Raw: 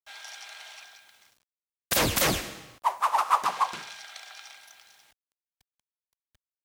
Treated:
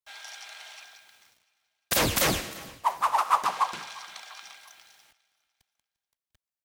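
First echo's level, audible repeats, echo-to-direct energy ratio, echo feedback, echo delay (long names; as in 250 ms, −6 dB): −21.0 dB, 3, −20.0 dB, 46%, 348 ms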